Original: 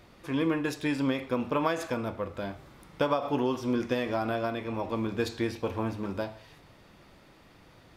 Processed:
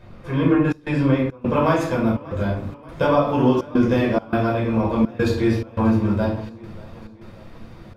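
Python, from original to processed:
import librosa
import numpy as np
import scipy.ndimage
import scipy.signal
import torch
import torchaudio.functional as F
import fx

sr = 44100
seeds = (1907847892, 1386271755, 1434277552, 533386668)

y = fx.high_shelf(x, sr, hz=4000.0, db=fx.steps((0.0, -11.0), (1.45, -3.0)))
y = fx.room_shoebox(y, sr, seeds[0], volume_m3=490.0, walls='furnished', distance_m=5.2)
y = fx.step_gate(y, sr, bpm=104, pattern='xxxxx.xxx.', floor_db=-24.0, edge_ms=4.5)
y = fx.low_shelf(y, sr, hz=230.0, db=6.5)
y = fx.echo_warbled(y, sr, ms=585, feedback_pct=57, rate_hz=2.8, cents=63, wet_db=-21)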